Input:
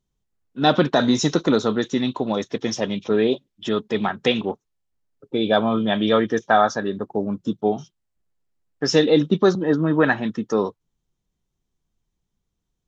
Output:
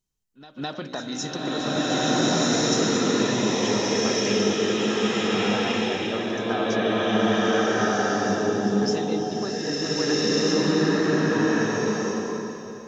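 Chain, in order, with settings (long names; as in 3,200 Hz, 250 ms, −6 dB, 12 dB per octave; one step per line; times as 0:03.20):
high-shelf EQ 2,300 Hz +10.5 dB
notch filter 3,500 Hz, Q 8.8
hum removal 60.53 Hz, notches 11
downward compressor, threshold −22 dBFS, peak gain reduction 11.5 dB
backwards echo 209 ms −15.5 dB
slow-attack reverb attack 1,530 ms, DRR −11.5 dB
level −7 dB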